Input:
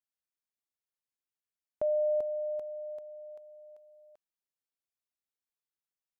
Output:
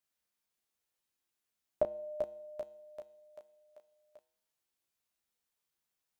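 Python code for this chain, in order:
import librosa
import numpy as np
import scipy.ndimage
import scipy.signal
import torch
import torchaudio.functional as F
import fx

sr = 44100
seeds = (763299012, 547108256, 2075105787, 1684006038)

p1 = fx.comb_fb(x, sr, f0_hz=70.0, decay_s=0.73, harmonics='odd', damping=0.0, mix_pct=60)
p2 = p1 + fx.room_early_taps(p1, sr, ms=(14, 34), db=(-4.5, -5.5), dry=0)
y = F.gain(torch.from_numpy(p2), 12.0).numpy()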